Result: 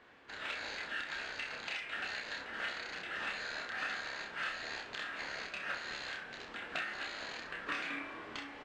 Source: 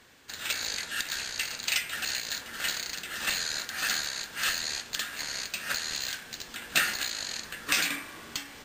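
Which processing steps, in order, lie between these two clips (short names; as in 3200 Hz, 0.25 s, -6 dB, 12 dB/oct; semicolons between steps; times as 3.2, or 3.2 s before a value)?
tone controls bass -10 dB, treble -10 dB; compressor 10:1, threshold -33 dBFS, peak gain reduction 12 dB; tape spacing loss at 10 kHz 22 dB; early reflections 29 ms -3.5 dB, 64 ms -10.5 dB; gain +1 dB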